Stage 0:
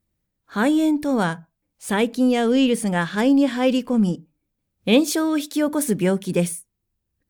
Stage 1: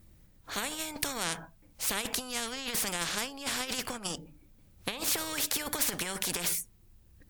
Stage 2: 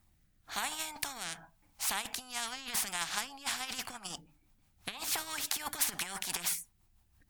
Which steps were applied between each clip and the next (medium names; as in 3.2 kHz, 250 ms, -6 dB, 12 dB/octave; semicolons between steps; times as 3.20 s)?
compressor with a negative ratio -21 dBFS, ratio -0.5; bass shelf 79 Hz +7.5 dB; spectrum-flattening compressor 4:1
resonant low shelf 640 Hz -6.5 dB, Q 3; rotary cabinet horn 1 Hz, later 6 Hz, at 2.15 s; in parallel at -9.5 dB: crossover distortion -37 dBFS; on the sum: trim -2 dB